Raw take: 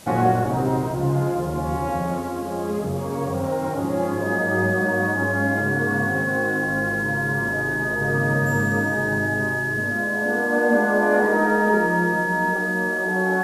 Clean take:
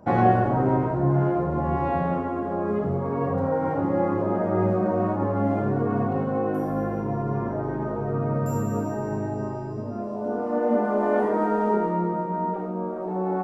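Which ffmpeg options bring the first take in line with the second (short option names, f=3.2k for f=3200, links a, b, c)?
-af "bandreject=f=1.7k:w=30,afwtdn=0.0056,asetnsamples=n=441:p=0,asendcmd='8.01 volume volume -3dB',volume=0dB"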